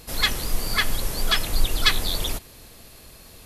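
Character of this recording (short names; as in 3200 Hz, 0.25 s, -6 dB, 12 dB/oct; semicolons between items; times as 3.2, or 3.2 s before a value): noise floor -47 dBFS; spectral tilt -2.5 dB/oct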